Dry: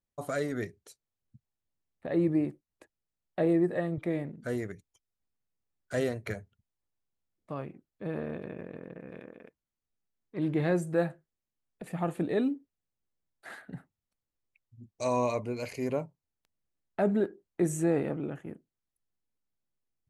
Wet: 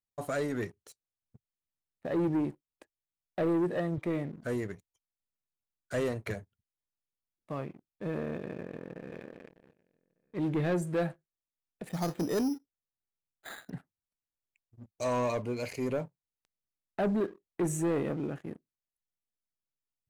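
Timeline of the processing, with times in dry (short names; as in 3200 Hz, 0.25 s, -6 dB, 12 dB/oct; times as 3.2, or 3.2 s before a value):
8.39–9.12 echo throw 0.6 s, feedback 35%, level -13.5 dB
11.89–13.7 careless resampling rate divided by 8×, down filtered, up hold
whole clip: sample leveller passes 2; gain -6.5 dB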